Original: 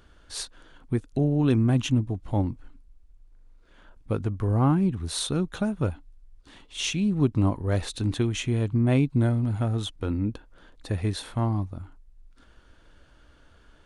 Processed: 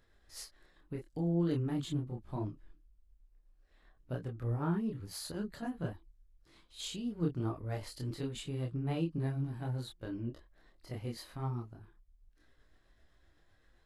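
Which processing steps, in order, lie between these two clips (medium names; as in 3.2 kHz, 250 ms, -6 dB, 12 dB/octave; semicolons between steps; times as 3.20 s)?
rotating-head pitch shifter +2.5 st; chorus voices 4, 0.64 Hz, delay 27 ms, depth 3.7 ms; trim -8.5 dB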